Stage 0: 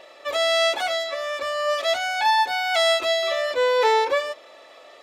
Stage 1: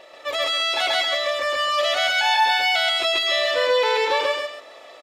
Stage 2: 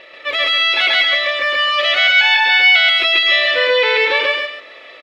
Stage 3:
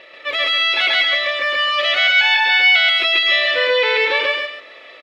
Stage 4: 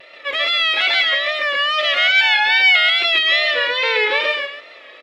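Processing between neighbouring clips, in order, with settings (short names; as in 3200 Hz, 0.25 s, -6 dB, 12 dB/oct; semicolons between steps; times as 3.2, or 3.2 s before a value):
dynamic EQ 3100 Hz, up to +7 dB, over -36 dBFS, Q 1; limiter -15.5 dBFS, peak gain reduction 9.5 dB; on a send: loudspeakers at several distances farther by 46 m 0 dB, 93 m -9 dB
EQ curve 510 Hz 0 dB, 750 Hz -8 dB, 2200 Hz +9 dB, 4000 Hz +1 dB, 7300 Hz -13 dB; gain +4 dB
HPF 53 Hz; gain -2 dB
notches 50/100/150/200/250/300/350/400/450/500 Hz; vibrato 2.4 Hz 66 cents; added harmonics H 3 -35 dB, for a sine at -3 dBFS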